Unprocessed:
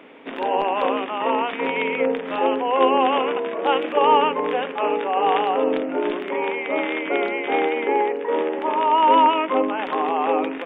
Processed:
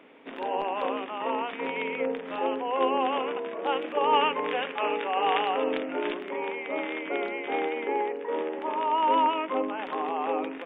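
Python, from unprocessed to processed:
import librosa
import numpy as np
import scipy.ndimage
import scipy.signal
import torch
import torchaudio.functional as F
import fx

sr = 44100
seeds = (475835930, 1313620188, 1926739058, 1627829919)

y = fx.peak_eq(x, sr, hz=2600.0, db=7.5, octaves=2.2, at=(4.13, 6.14))
y = y * librosa.db_to_amplitude(-8.0)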